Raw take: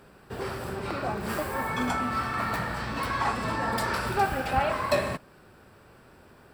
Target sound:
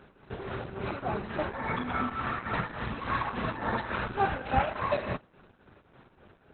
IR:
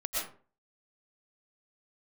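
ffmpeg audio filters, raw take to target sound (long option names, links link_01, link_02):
-af "tremolo=f=3.5:d=0.59,volume=1.5dB" -ar 48000 -c:a libopus -b:a 8k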